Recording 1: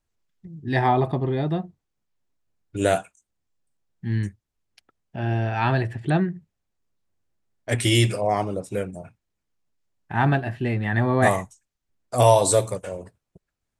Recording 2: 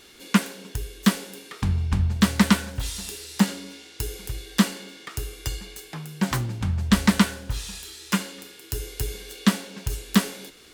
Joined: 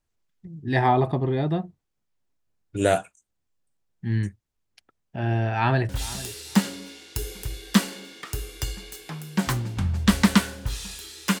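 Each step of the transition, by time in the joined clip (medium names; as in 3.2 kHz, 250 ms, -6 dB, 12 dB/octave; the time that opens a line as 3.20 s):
recording 1
5.55–5.89 s: echo throw 450 ms, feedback 15%, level -17.5 dB
5.89 s: go over to recording 2 from 2.73 s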